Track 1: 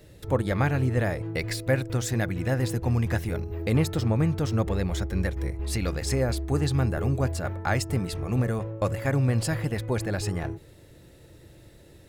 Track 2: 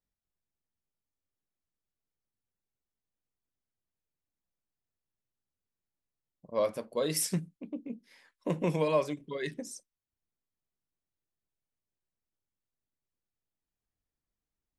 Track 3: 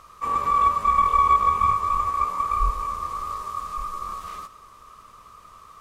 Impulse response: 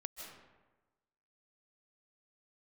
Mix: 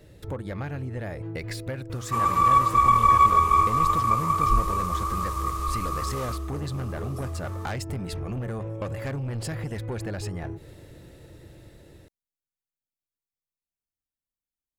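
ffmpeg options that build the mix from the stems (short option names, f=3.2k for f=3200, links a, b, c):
-filter_complex "[0:a]lowpass=f=2.7k:p=1,dynaudnorm=f=860:g=7:m=9.5dB,volume=0dB[a];[1:a]acompressor=threshold=-37dB:ratio=2,volume=-10dB[b];[2:a]agate=range=-33dB:threshold=-45dB:ratio=3:detection=peak,adelay=1900,volume=0.5dB[c];[a][b]amix=inputs=2:normalize=0,asoftclip=type=tanh:threshold=-16.5dB,acompressor=threshold=-30dB:ratio=6,volume=0dB[d];[c][d]amix=inputs=2:normalize=0,highshelf=f=6.9k:g=9.5"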